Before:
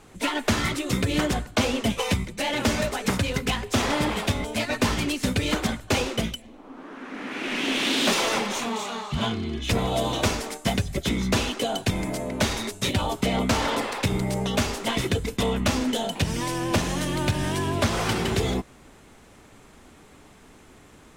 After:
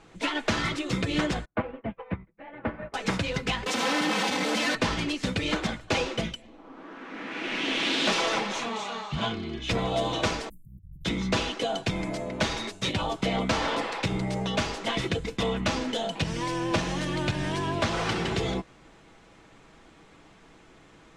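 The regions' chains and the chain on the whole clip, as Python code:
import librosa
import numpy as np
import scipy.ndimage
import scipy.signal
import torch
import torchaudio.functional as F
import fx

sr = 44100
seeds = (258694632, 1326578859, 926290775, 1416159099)

y = fx.chain(x, sr, fx.lowpass(hz=1900.0, slope=24),
    fx.upward_expand(threshold_db=-43.0, expansion=2.5), at=(1.45, 2.94))
y = fx.chain(y, sr, fx.clip_1bit(),
    fx.highpass(hz=140.0, slope=24),
    fx.comb(ms=3.9, depth=0.85), at=(3.66, 4.75))
y = fx.chain(y, sr, fx.cheby2_bandstop(low_hz=550.0, high_hz=5300.0, order=4, stop_db=70),
    fx.high_shelf(hz=12000.0, db=11.5),
    fx.over_compress(threshold_db=-41.0, ratio=-1.0), at=(10.49, 11.05))
y = scipy.signal.sosfilt(scipy.signal.butter(2, 5500.0, 'lowpass', fs=sr, output='sos'), y)
y = fx.low_shelf(y, sr, hz=340.0, db=-3.0)
y = y + 0.35 * np.pad(y, (int(6.1 * sr / 1000.0), 0))[:len(y)]
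y = y * 10.0 ** (-2.0 / 20.0)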